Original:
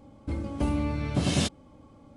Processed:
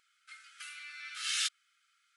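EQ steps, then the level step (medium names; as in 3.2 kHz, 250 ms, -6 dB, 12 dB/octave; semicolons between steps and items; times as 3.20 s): brick-wall FIR high-pass 1.2 kHz; 0.0 dB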